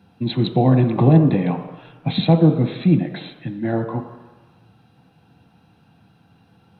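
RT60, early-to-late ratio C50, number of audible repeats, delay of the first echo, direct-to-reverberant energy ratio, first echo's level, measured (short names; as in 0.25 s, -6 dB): 1.2 s, 8.5 dB, none, none, 5.5 dB, none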